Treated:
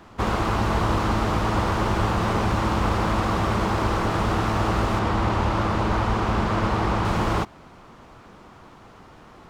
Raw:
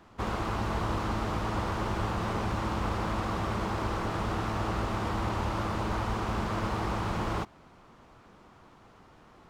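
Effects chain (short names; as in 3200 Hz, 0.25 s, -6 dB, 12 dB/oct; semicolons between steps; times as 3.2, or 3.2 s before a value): 4.99–7.05 high shelf 7800 Hz -10 dB; gain +8.5 dB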